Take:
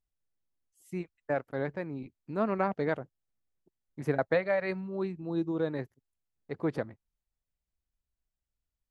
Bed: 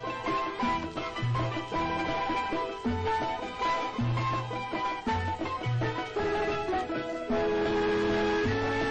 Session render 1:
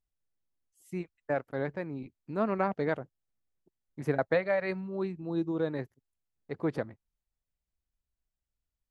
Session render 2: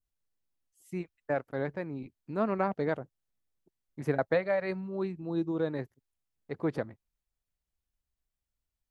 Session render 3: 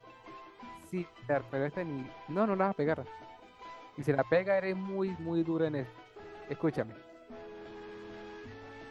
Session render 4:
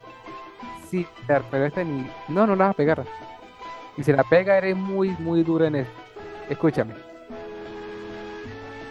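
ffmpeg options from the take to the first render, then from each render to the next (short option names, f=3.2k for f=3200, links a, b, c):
-af anull
-af "adynamicequalizer=threshold=0.00708:dfrequency=2200:dqfactor=0.9:tfrequency=2200:tqfactor=0.9:attack=5:release=100:ratio=0.375:range=2:mode=cutabove:tftype=bell"
-filter_complex "[1:a]volume=-19.5dB[a];[0:a][a]amix=inputs=2:normalize=0"
-af "volume=10.5dB"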